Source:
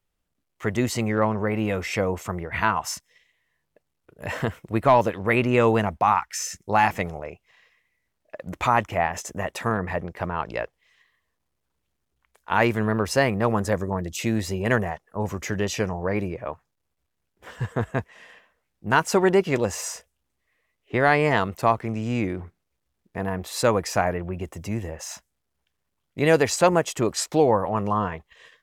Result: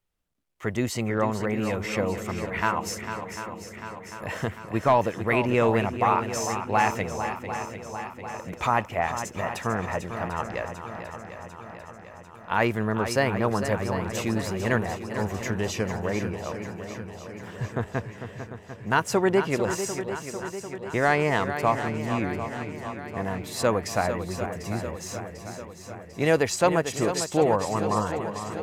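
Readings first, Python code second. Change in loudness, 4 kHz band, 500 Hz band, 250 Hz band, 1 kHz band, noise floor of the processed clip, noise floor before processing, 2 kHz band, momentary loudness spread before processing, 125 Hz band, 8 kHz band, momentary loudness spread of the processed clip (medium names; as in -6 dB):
-3.0 dB, -2.0 dB, -2.0 dB, -2.0 dB, -2.0 dB, -45 dBFS, -78 dBFS, -2.0 dB, 14 LU, -2.0 dB, -2.0 dB, 16 LU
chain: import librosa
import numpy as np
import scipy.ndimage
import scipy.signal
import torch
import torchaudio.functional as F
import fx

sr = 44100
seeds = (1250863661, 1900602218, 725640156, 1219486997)

y = fx.echo_swing(x, sr, ms=746, ratio=1.5, feedback_pct=58, wet_db=-9.5)
y = y * 10.0 ** (-3.0 / 20.0)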